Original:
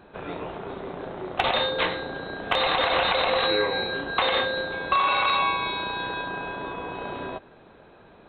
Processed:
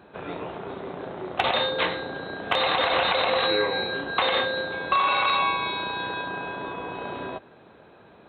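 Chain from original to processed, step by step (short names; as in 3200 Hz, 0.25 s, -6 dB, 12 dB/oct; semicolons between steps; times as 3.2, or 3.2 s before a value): HPF 76 Hz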